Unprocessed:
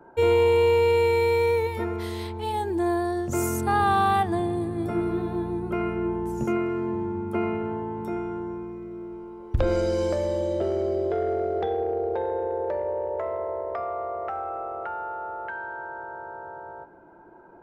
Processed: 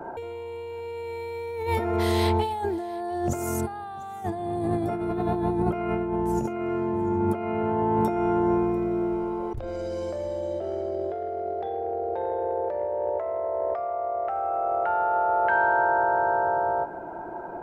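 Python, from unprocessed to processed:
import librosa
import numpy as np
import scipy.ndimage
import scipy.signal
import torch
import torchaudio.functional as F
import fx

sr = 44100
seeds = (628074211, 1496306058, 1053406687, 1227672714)

y = fx.peak_eq(x, sr, hz=710.0, db=8.5, octaves=0.52)
y = fx.over_compress(y, sr, threshold_db=-32.0, ratio=-1.0)
y = y + 10.0 ** (-22.0 / 20.0) * np.pad(y, (int(695 * sr / 1000.0), 0))[:len(y)]
y = F.gain(torch.from_numpy(y), 4.0).numpy()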